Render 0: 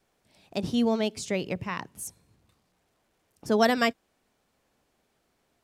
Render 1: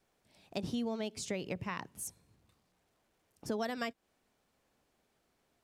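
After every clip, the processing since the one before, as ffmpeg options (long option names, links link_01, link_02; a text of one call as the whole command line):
ffmpeg -i in.wav -af "acompressor=threshold=-29dB:ratio=6,volume=-4dB" out.wav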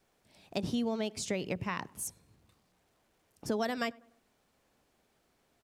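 ffmpeg -i in.wav -filter_complex "[0:a]asplit=2[link_01][link_02];[link_02]adelay=99,lowpass=frequency=1500:poles=1,volume=-23dB,asplit=2[link_03][link_04];[link_04]adelay=99,lowpass=frequency=1500:poles=1,volume=0.52,asplit=2[link_05][link_06];[link_06]adelay=99,lowpass=frequency=1500:poles=1,volume=0.52[link_07];[link_01][link_03][link_05][link_07]amix=inputs=4:normalize=0,volume=3.5dB" out.wav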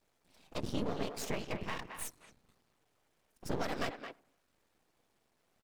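ffmpeg -i in.wav -filter_complex "[0:a]afftfilt=real='hypot(re,im)*cos(2*PI*random(0))':imag='hypot(re,im)*sin(2*PI*random(1))':win_size=512:overlap=0.75,aeval=exprs='max(val(0),0)':channel_layout=same,asplit=2[link_01][link_02];[link_02]adelay=220,highpass=300,lowpass=3400,asoftclip=type=hard:threshold=-36dB,volume=-7dB[link_03];[link_01][link_03]amix=inputs=2:normalize=0,volume=6dB" out.wav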